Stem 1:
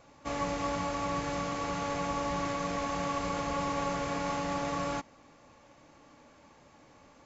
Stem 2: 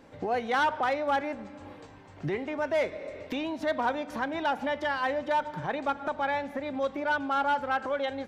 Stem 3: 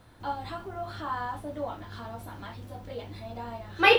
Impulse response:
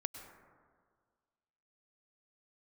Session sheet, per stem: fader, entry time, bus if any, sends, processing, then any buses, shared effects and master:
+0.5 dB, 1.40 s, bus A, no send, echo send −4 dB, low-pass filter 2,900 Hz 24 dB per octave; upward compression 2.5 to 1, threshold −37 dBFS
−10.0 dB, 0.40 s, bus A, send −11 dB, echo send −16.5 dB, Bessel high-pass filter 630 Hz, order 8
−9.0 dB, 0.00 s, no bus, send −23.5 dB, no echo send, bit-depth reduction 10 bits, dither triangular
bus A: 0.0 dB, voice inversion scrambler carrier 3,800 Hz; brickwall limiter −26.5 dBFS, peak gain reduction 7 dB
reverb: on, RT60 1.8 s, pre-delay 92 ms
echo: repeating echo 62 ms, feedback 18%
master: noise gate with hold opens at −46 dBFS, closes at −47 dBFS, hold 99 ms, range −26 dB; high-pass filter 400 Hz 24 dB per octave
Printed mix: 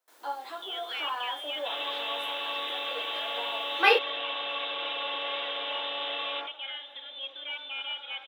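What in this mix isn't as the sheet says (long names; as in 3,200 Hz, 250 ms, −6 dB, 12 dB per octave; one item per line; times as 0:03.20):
stem 1: missing upward compression 2.5 to 1, threshold −37 dBFS
stem 2: missing Bessel high-pass filter 630 Hz, order 8
stem 3 −9.0 dB → −2.0 dB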